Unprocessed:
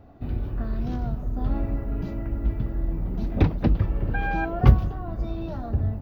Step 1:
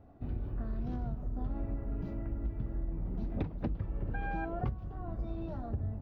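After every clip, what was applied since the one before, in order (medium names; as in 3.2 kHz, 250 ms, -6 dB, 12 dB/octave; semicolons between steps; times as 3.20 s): treble shelf 2.4 kHz -9 dB; compression 16:1, threshold -23 dBFS, peak gain reduction 17 dB; trim -7 dB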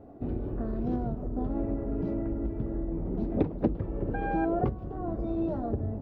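peaking EQ 400 Hz +14 dB 2.2 oct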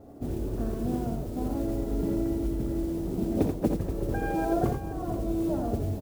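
modulation noise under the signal 25 dB; multi-tap echo 63/84/480 ms -10.5/-5.5/-13 dB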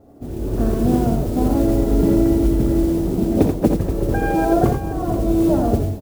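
level rider gain up to 13 dB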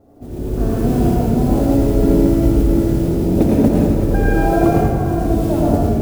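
reverberation RT60 1.6 s, pre-delay 108 ms, DRR -3.5 dB; trim -2 dB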